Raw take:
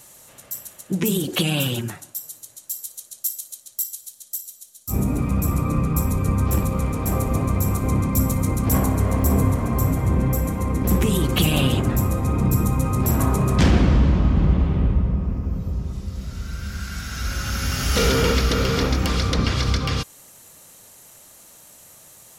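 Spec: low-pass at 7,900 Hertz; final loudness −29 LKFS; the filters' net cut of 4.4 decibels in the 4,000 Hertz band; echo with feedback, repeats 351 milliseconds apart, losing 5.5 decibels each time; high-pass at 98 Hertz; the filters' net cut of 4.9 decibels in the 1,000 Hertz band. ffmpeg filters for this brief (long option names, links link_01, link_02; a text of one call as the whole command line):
ffmpeg -i in.wav -af "highpass=98,lowpass=7900,equalizer=frequency=1000:width_type=o:gain=-6,equalizer=frequency=4000:width_type=o:gain=-5.5,aecho=1:1:351|702|1053|1404|1755|2106|2457:0.531|0.281|0.149|0.079|0.0419|0.0222|0.0118,volume=-6dB" out.wav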